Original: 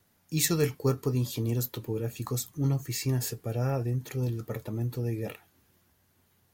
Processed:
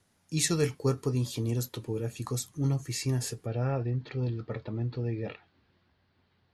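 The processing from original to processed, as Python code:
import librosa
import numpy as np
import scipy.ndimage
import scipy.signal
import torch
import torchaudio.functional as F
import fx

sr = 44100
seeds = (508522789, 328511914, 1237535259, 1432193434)

y = fx.ellip_lowpass(x, sr, hz=fx.steps((0.0, 11000.0), (3.45, 4500.0)), order=4, stop_db=80)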